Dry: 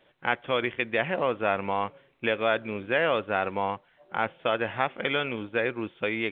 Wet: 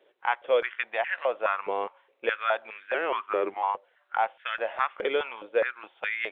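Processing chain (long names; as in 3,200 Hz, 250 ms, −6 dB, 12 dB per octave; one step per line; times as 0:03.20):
0:02.94–0:03.63: frequency shifter −170 Hz
high-pass on a step sequencer 4.8 Hz 410–1,700 Hz
level −5.5 dB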